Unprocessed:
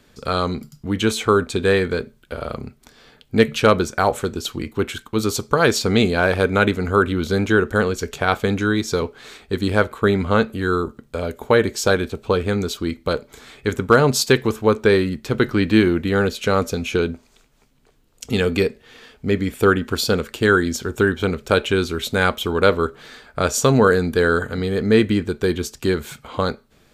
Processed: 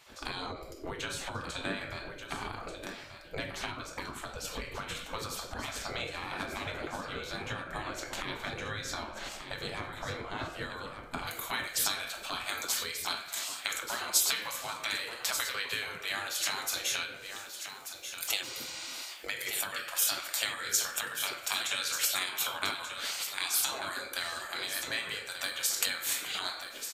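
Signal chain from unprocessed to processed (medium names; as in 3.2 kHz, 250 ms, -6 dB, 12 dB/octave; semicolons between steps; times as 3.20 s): reverberation RT60 0.55 s, pre-delay 6 ms, DRR 2 dB; compression 12:1, threshold -27 dBFS, peak gain reduction 22 dB; spectral gate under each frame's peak -15 dB weak; tilt EQ -1.5 dB/octave, from 11.26 s +3 dB/octave; delay 1185 ms -9.5 dB; 18.45–19.00 s: spectral replace 550–9300 Hz after; endings held to a fixed fall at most 110 dB/s; trim +4.5 dB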